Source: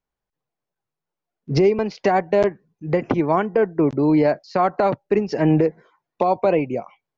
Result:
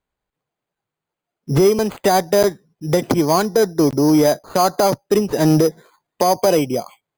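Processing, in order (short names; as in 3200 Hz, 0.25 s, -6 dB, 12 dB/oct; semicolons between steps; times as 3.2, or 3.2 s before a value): added harmonics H 5 -25 dB, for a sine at -7 dBFS; careless resampling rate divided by 8×, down none, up hold; gain +2.5 dB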